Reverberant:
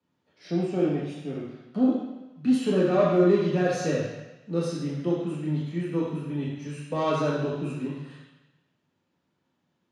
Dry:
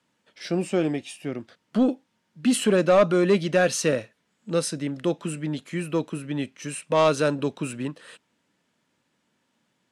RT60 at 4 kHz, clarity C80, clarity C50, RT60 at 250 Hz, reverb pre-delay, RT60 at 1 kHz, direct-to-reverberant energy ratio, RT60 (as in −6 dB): 1.1 s, 3.0 dB, 0.5 dB, 1.0 s, 3 ms, 1.1 s, −5.5 dB, 1.0 s